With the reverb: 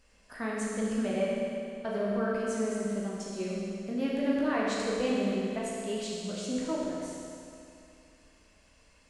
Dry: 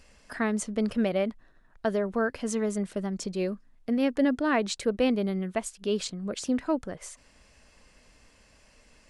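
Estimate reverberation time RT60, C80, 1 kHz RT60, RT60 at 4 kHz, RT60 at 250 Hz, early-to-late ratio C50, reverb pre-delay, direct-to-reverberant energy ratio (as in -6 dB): 2.6 s, -0.5 dB, 2.6 s, 2.5 s, 2.6 s, -2.0 dB, 14 ms, -5.5 dB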